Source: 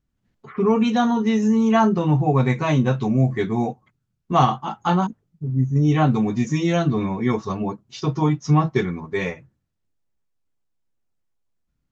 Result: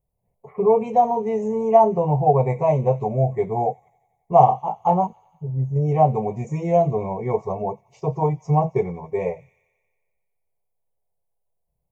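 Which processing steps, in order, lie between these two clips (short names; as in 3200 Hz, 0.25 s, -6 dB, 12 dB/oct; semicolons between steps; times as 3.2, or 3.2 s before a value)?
EQ curve 170 Hz 0 dB, 280 Hz -16 dB, 430 Hz +7 dB, 690 Hz +11 dB, 1000 Hz +3 dB, 1500 Hz -28 dB, 2200 Hz -5 dB, 3600 Hz -26 dB, 6000 Hz -14 dB, 10000 Hz +7 dB; on a send: thin delay 90 ms, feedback 70%, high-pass 2400 Hz, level -16 dB; on the sum: gain -2.5 dB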